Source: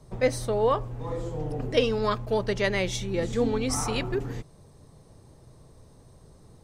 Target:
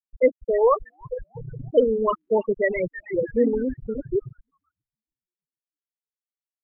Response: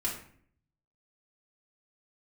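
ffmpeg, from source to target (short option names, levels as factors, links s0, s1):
-filter_complex "[0:a]afftfilt=real='re*gte(hypot(re,im),0.251)':imag='im*gte(hypot(re,im),0.251)':win_size=1024:overlap=0.75,acrossover=split=170|1900[s0][s1][s2];[s0]asoftclip=type=tanh:threshold=0.0126[s3];[s2]asplit=7[s4][s5][s6][s7][s8][s9][s10];[s5]adelay=316,afreqshift=-140,volume=0.631[s11];[s6]adelay=632,afreqshift=-280,volume=0.292[s12];[s7]adelay=948,afreqshift=-420,volume=0.133[s13];[s8]adelay=1264,afreqshift=-560,volume=0.0617[s14];[s9]adelay=1580,afreqshift=-700,volume=0.0282[s15];[s10]adelay=1896,afreqshift=-840,volume=0.013[s16];[s4][s11][s12][s13][s14][s15][s16]amix=inputs=7:normalize=0[s17];[s3][s1][s17]amix=inputs=3:normalize=0,volume=2"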